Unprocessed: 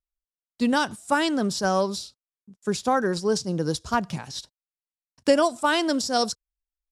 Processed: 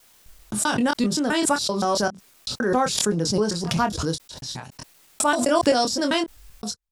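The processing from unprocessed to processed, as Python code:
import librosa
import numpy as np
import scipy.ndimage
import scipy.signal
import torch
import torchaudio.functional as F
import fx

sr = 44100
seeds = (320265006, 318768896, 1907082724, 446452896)

y = fx.block_reorder(x, sr, ms=130.0, group=4)
y = fx.doubler(y, sr, ms=24.0, db=-6.5)
y = fx.pre_swell(y, sr, db_per_s=42.0)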